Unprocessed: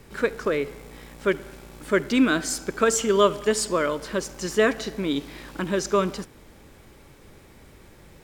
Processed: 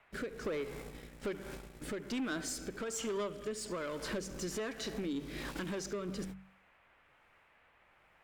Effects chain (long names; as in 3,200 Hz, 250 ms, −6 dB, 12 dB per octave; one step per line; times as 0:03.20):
noise gate −41 dBFS, range −30 dB
hum removal 47.73 Hz, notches 4
downward compressor 12 to 1, threshold −34 dBFS, peak gain reduction 21.5 dB
soft clipping −35 dBFS, distortion −12 dB
rotating-speaker cabinet horn 1.2 Hz
noise in a band 490–2,500 Hz −72 dBFS
level +4.5 dB